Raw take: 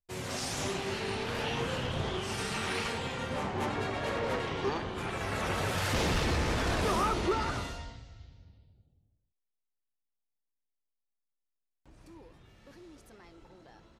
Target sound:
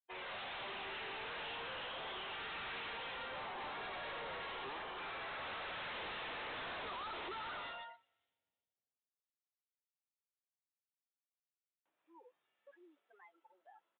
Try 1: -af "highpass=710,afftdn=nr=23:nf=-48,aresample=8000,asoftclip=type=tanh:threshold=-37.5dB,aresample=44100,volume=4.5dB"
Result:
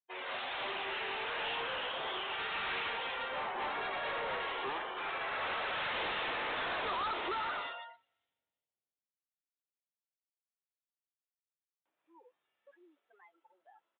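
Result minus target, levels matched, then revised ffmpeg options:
soft clip: distortion -5 dB
-af "highpass=710,afftdn=nr=23:nf=-48,aresample=8000,asoftclip=type=tanh:threshold=-48dB,aresample=44100,volume=4.5dB"

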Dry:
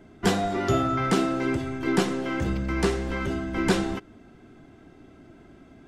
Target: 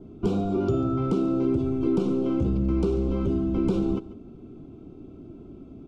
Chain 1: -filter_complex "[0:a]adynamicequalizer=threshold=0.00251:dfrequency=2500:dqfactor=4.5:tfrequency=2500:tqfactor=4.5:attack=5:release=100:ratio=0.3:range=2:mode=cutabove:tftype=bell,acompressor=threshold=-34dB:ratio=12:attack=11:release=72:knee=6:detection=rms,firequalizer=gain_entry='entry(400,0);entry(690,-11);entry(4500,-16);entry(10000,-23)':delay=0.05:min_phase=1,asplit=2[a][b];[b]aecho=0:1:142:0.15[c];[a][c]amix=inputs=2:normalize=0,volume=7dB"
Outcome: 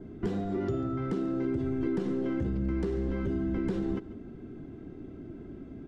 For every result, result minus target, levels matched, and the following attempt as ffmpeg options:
2000 Hz band +10.0 dB; compressor: peak gain reduction +7 dB
-filter_complex "[0:a]adynamicequalizer=threshold=0.00251:dfrequency=2500:dqfactor=4.5:tfrequency=2500:tqfactor=4.5:attack=5:release=100:ratio=0.3:range=2:mode=cutabove:tftype=bell,asuperstop=centerf=1800:order=8:qfactor=2.3,acompressor=threshold=-34dB:ratio=12:attack=11:release=72:knee=6:detection=rms,firequalizer=gain_entry='entry(400,0);entry(690,-11);entry(4500,-16);entry(10000,-23)':delay=0.05:min_phase=1,asplit=2[a][b];[b]aecho=0:1:142:0.15[c];[a][c]amix=inputs=2:normalize=0,volume=7dB"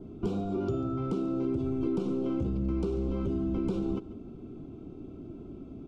compressor: peak gain reduction +7 dB
-filter_complex "[0:a]adynamicequalizer=threshold=0.00251:dfrequency=2500:dqfactor=4.5:tfrequency=2500:tqfactor=4.5:attack=5:release=100:ratio=0.3:range=2:mode=cutabove:tftype=bell,asuperstop=centerf=1800:order=8:qfactor=2.3,acompressor=threshold=-26.5dB:ratio=12:attack=11:release=72:knee=6:detection=rms,firequalizer=gain_entry='entry(400,0);entry(690,-11);entry(4500,-16);entry(10000,-23)':delay=0.05:min_phase=1,asplit=2[a][b];[b]aecho=0:1:142:0.15[c];[a][c]amix=inputs=2:normalize=0,volume=7dB"

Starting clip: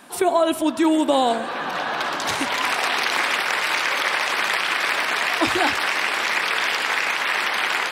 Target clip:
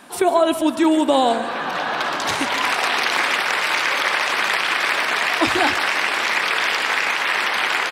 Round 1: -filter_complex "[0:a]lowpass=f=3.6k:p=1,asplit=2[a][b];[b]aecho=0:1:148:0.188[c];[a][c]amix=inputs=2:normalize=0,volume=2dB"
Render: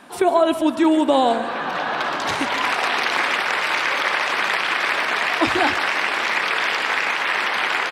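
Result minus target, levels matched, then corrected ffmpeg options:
8000 Hz band -4.5 dB
-filter_complex "[0:a]lowpass=f=11k:p=1,asplit=2[a][b];[b]aecho=0:1:148:0.188[c];[a][c]amix=inputs=2:normalize=0,volume=2dB"

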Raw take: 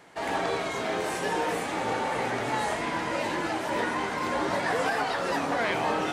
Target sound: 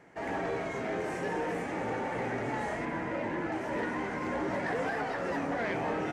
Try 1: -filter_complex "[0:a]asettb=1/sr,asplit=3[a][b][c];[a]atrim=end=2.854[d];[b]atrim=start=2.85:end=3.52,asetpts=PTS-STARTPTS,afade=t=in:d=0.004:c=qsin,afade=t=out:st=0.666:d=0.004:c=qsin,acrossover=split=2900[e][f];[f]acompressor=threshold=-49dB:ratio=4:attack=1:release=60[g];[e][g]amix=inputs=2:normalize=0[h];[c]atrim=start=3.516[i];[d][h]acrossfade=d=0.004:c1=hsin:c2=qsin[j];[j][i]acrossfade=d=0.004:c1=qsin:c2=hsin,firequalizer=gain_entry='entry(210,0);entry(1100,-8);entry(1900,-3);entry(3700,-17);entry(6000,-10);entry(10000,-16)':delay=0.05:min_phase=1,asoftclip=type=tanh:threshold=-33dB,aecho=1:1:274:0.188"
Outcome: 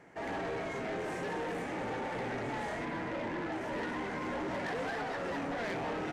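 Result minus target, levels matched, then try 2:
soft clip: distortion +9 dB
-filter_complex "[0:a]asettb=1/sr,asplit=3[a][b][c];[a]atrim=end=2.854[d];[b]atrim=start=2.85:end=3.52,asetpts=PTS-STARTPTS,afade=t=in:d=0.004:c=qsin,afade=t=out:st=0.666:d=0.004:c=qsin,acrossover=split=2900[e][f];[f]acompressor=threshold=-49dB:ratio=4:attack=1:release=60[g];[e][g]amix=inputs=2:normalize=0[h];[c]atrim=start=3.516[i];[d][h]acrossfade=d=0.004:c1=hsin:c2=qsin[j];[j][i]acrossfade=d=0.004:c1=qsin:c2=hsin,firequalizer=gain_entry='entry(210,0);entry(1100,-8);entry(1900,-3);entry(3700,-17);entry(6000,-10);entry(10000,-16)':delay=0.05:min_phase=1,asoftclip=type=tanh:threshold=-24.5dB,aecho=1:1:274:0.188"

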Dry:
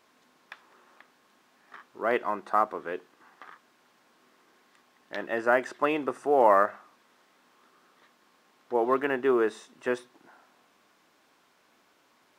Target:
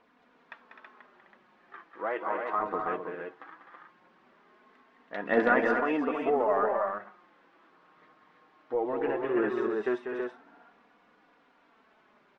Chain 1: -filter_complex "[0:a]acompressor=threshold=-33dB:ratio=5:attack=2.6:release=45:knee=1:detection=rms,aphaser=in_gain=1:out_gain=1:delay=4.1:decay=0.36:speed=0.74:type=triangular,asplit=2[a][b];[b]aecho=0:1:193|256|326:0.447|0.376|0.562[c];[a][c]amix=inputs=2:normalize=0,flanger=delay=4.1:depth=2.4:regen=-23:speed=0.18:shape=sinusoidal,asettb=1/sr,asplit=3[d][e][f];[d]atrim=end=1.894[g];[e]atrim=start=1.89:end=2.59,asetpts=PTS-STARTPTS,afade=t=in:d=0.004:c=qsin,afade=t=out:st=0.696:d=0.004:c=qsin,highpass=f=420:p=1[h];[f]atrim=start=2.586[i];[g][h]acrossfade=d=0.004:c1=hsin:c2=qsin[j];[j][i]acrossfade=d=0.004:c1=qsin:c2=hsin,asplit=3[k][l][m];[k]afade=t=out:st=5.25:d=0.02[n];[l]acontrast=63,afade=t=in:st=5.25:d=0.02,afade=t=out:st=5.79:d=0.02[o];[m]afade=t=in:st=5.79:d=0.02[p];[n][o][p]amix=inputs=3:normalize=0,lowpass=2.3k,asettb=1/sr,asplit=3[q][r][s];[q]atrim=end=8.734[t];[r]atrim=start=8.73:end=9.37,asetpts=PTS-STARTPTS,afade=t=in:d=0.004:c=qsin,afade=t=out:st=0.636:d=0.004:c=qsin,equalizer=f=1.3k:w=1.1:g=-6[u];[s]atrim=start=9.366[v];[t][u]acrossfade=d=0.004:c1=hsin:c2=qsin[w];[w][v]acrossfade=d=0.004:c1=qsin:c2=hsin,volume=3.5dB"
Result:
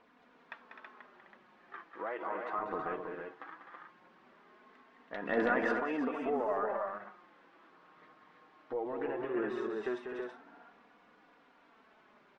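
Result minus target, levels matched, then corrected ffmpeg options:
compressor: peak gain reduction +7 dB
-filter_complex "[0:a]acompressor=threshold=-24dB:ratio=5:attack=2.6:release=45:knee=1:detection=rms,aphaser=in_gain=1:out_gain=1:delay=4.1:decay=0.36:speed=0.74:type=triangular,asplit=2[a][b];[b]aecho=0:1:193|256|326:0.447|0.376|0.562[c];[a][c]amix=inputs=2:normalize=0,flanger=delay=4.1:depth=2.4:regen=-23:speed=0.18:shape=sinusoidal,asettb=1/sr,asplit=3[d][e][f];[d]atrim=end=1.894[g];[e]atrim=start=1.89:end=2.59,asetpts=PTS-STARTPTS,afade=t=in:d=0.004:c=qsin,afade=t=out:st=0.696:d=0.004:c=qsin,highpass=f=420:p=1[h];[f]atrim=start=2.586[i];[g][h]acrossfade=d=0.004:c1=hsin:c2=qsin[j];[j][i]acrossfade=d=0.004:c1=qsin:c2=hsin,asplit=3[k][l][m];[k]afade=t=out:st=5.25:d=0.02[n];[l]acontrast=63,afade=t=in:st=5.25:d=0.02,afade=t=out:st=5.79:d=0.02[o];[m]afade=t=in:st=5.79:d=0.02[p];[n][o][p]amix=inputs=3:normalize=0,lowpass=2.3k,asettb=1/sr,asplit=3[q][r][s];[q]atrim=end=8.734[t];[r]atrim=start=8.73:end=9.37,asetpts=PTS-STARTPTS,afade=t=in:d=0.004:c=qsin,afade=t=out:st=0.636:d=0.004:c=qsin,equalizer=f=1.3k:w=1.1:g=-6[u];[s]atrim=start=9.366[v];[t][u]acrossfade=d=0.004:c1=hsin:c2=qsin[w];[w][v]acrossfade=d=0.004:c1=qsin:c2=hsin,volume=3.5dB"

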